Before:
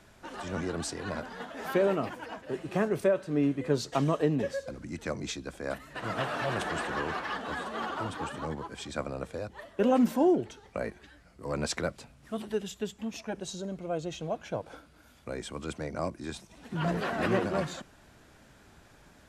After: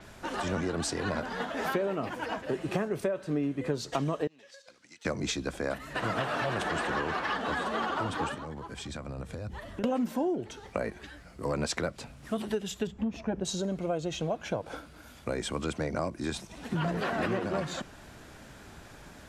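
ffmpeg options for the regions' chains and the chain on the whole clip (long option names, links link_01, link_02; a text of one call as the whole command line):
ffmpeg -i in.wav -filter_complex "[0:a]asettb=1/sr,asplit=3[link_01][link_02][link_03];[link_01]atrim=end=4.274[link_04];[link_02]atrim=start=4.27:end=5.05,asetpts=PTS-STARTPTS,afade=type=in:duration=0.004:curve=qsin,afade=type=out:start_time=0.776:duration=0.004:curve=qsin,agate=range=-8dB:threshold=-40dB:ratio=16:release=100:detection=peak,bandpass=frequency=4300:width_type=q:width=0.91,acompressor=threshold=-55dB:ratio=12:attack=3.2:release=140:knee=1:detection=peak[link_05];[link_03]atrim=start=5.046[link_06];[link_04][link_05]acrossfade=duration=0.004:curve1=hsin:curve2=qsin[link_07];[link_07][link_06]acrossfade=duration=0.004:curve1=qsin:curve2=hsin,asettb=1/sr,asplit=3[link_08][link_09][link_10];[link_08]atrim=end=8.344[link_11];[link_09]atrim=start=8.34:end=9.84,asetpts=PTS-STARTPTS,afade=type=in:duration=0.004:curve=qsin,afade=type=out:start_time=1.496:duration=0.004:curve=qsin,acompressor=threshold=-46dB:ratio=4:attack=3.2:release=140:knee=1:detection=peak,asubboost=boost=7:cutoff=240[link_12];[link_10]atrim=start=9.836[link_13];[link_11][link_12]acrossfade=duration=0.004:curve1=hsin:curve2=qsin[link_14];[link_14][link_13]acrossfade=duration=0.004:curve1=qsin:curve2=hsin,asettb=1/sr,asplit=3[link_15][link_16][link_17];[link_15]atrim=end=12.874[link_18];[link_16]atrim=start=12.87:end=13.45,asetpts=PTS-STARTPTS,afade=type=in:duration=0.004:curve=qsin,afade=type=out:start_time=0.576:duration=0.004:curve=qsin,lowpass=frequency=1200:poles=1,lowshelf=frequency=170:gain=9[link_19];[link_17]atrim=start=13.446[link_20];[link_18][link_19]acrossfade=duration=0.004:curve1=hsin:curve2=qsin[link_21];[link_21][link_20]acrossfade=duration=0.004:curve1=qsin:curve2=hsin,acompressor=threshold=-35dB:ratio=6,adynamicequalizer=threshold=0.00126:dfrequency=7300:dqfactor=0.7:tfrequency=7300:tqfactor=0.7:attack=5:release=100:ratio=0.375:range=2:mode=cutabove:tftype=highshelf,volume=7.5dB" out.wav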